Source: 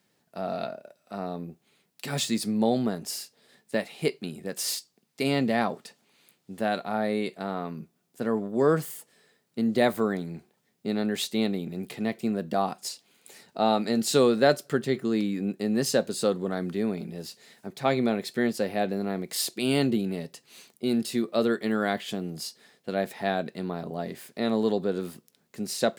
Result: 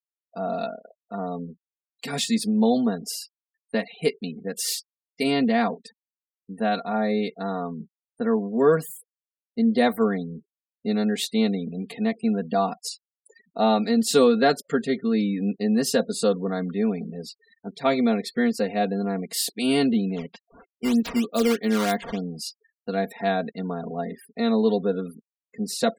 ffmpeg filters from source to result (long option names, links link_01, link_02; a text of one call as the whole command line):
ffmpeg -i in.wav -filter_complex "[0:a]asettb=1/sr,asplit=3[link_01][link_02][link_03];[link_01]atrim=end=20.164[link_04];[link_02]atrim=start=20.16:end=22.38,asetpts=PTS-STARTPTS,afade=type=in:duration=0.004:curve=qsin,afade=type=out:start_time=2.216:duration=0.004:curve=qsin,acrusher=samples=10:mix=1:aa=0.000001:lfo=1:lforange=16:lforate=3.2[link_05];[link_03]atrim=start=22.376[link_06];[link_04][link_05]acrossfade=duration=0.004:curve1=hsin:curve2=qsin[link_07];[link_07][link_06]acrossfade=duration=0.004:curve1=qsin:curve2=hsin,afftfilt=real='re*gte(hypot(re,im),0.00794)':imag='im*gte(hypot(re,im),0.00794)':win_size=1024:overlap=0.75,aecho=1:1:4.3:0.88" out.wav